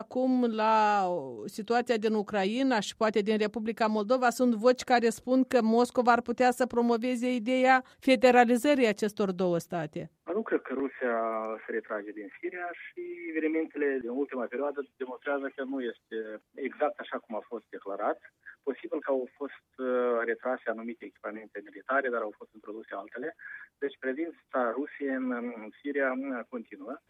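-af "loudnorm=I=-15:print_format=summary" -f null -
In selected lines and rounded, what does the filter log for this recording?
Input Integrated:    -29.6 LUFS
Input True Peak:      -9.5 dBTP
Input LRA:             9.7 LU
Input Threshold:     -40.1 LUFS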